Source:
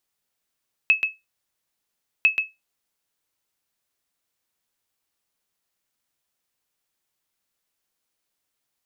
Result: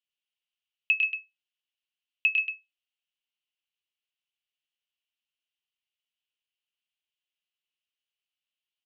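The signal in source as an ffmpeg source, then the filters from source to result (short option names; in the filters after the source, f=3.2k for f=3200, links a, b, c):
-f lavfi -i "aevalsrc='0.376*(sin(2*PI*2590*mod(t,1.35))*exp(-6.91*mod(t,1.35)/0.2)+0.501*sin(2*PI*2590*max(mod(t,1.35)-0.13,0))*exp(-6.91*max(mod(t,1.35)-0.13,0)/0.2))':d=2.7:s=44100"
-filter_complex "[0:a]bandpass=f=2.9k:t=q:w=6.2:csg=0,asplit=2[a][b];[b]aecho=0:1:101:0.668[c];[a][c]amix=inputs=2:normalize=0"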